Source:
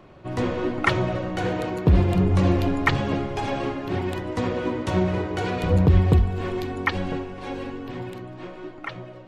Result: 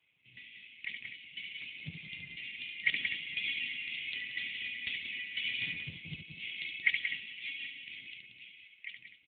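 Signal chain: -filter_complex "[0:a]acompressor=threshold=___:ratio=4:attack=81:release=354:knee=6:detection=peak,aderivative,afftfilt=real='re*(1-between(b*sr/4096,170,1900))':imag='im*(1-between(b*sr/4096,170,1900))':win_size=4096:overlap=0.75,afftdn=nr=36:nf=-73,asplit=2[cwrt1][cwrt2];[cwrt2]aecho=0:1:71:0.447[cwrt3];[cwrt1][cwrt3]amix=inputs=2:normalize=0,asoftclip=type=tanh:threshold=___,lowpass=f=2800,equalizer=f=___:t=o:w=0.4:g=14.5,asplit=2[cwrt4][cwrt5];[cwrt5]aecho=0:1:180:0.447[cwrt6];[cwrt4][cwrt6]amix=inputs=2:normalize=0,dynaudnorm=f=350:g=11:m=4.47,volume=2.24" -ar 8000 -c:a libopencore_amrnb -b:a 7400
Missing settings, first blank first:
0.0398, 0.0266, 180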